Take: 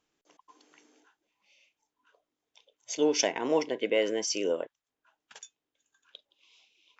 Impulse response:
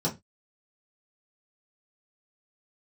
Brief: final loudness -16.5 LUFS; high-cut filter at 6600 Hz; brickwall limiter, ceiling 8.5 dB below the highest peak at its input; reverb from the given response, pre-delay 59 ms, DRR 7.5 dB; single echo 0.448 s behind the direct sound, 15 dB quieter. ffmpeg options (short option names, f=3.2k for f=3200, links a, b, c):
-filter_complex "[0:a]lowpass=6.6k,alimiter=limit=-21dB:level=0:latency=1,aecho=1:1:448:0.178,asplit=2[a][b];[1:a]atrim=start_sample=2205,adelay=59[c];[b][c]afir=irnorm=-1:irlink=0,volume=-15.5dB[d];[a][d]amix=inputs=2:normalize=0,volume=14dB"